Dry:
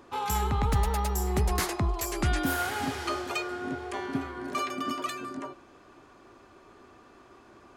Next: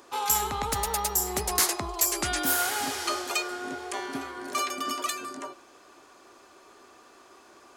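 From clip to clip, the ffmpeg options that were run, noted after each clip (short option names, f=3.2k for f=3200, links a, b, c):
-af "bass=f=250:g=-14,treble=f=4k:g=10,volume=1.5dB"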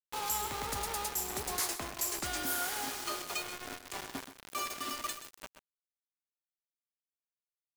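-filter_complex "[0:a]acrusher=bits=4:mix=0:aa=0.000001,asoftclip=type=tanh:threshold=-17dB,asplit=2[a][b];[b]aecho=0:1:129:0.266[c];[a][c]amix=inputs=2:normalize=0,volume=-8dB"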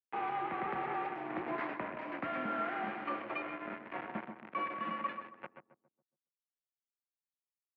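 -filter_complex "[0:a]afftfilt=real='re*gte(hypot(re,im),0.000794)':imag='im*gte(hypot(re,im),0.000794)':win_size=1024:overlap=0.75,asplit=2[a][b];[b]adelay=139,lowpass=f=880:p=1,volume=-7dB,asplit=2[c][d];[d]adelay=139,lowpass=f=880:p=1,volume=0.42,asplit=2[e][f];[f]adelay=139,lowpass=f=880:p=1,volume=0.42,asplit=2[g][h];[h]adelay=139,lowpass=f=880:p=1,volume=0.42,asplit=2[i][j];[j]adelay=139,lowpass=f=880:p=1,volume=0.42[k];[a][c][e][g][i][k]amix=inputs=6:normalize=0,highpass=f=210:t=q:w=0.5412,highpass=f=210:t=q:w=1.307,lowpass=f=2.4k:t=q:w=0.5176,lowpass=f=2.4k:t=q:w=0.7071,lowpass=f=2.4k:t=q:w=1.932,afreqshift=-56,volume=2dB"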